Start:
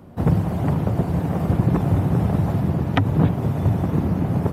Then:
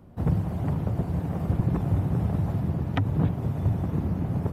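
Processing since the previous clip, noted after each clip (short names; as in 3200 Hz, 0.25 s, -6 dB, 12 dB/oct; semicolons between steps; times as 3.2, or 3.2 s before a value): low shelf 88 Hz +10 dB; gain -9 dB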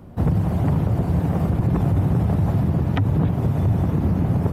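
limiter -20 dBFS, peak gain reduction 7 dB; gain +8.5 dB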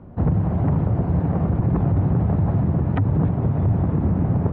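LPF 1700 Hz 12 dB/oct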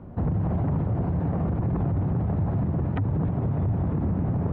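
limiter -18.5 dBFS, peak gain reduction 7 dB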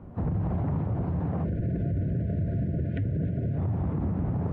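spectral gain 1.44–3.58, 690–1400 Hz -27 dB; gain -3 dB; Vorbis 32 kbps 32000 Hz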